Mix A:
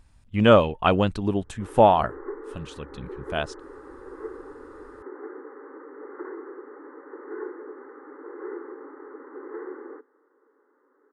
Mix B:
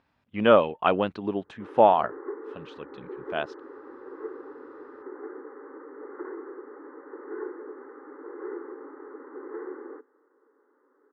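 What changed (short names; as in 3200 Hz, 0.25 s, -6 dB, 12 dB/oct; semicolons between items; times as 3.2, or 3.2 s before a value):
speech: add Bessel high-pass 310 Hz, order 2; master: add air absorption 260 m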